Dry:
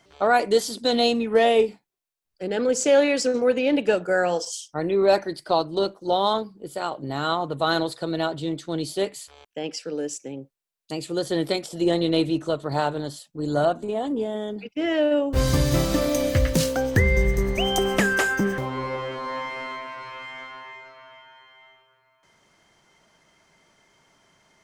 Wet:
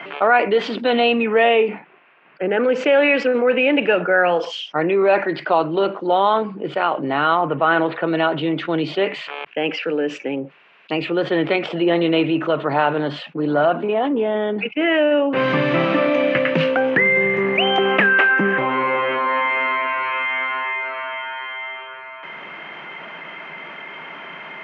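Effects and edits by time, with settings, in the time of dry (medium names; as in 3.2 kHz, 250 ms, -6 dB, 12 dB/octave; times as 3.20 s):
1.68–2.64 s: low-pass 2.2 kHz
7.41–8.08 s: low-pass 3 kHz 24 dB/octave
whole clip: Chebyshev band-pass 150–2700 Hz, order 4; tilt EQ +3 dB/octave; level flattener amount 50%; trim +4.5 dB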